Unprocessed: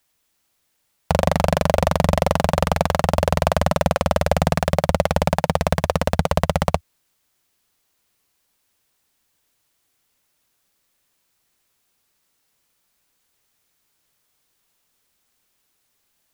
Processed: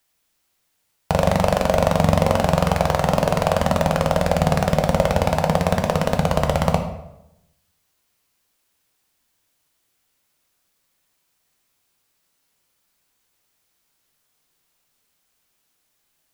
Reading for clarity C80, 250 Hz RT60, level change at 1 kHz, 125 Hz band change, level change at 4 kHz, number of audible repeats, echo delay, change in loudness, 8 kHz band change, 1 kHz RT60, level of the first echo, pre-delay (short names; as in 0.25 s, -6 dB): 11.0 dB, 1.0 s, +0.5 dB, +1.0 dB, -0.5 dB, none, none, +0.5 dB, -0.5 dB, 0.80 s, none, 6 ms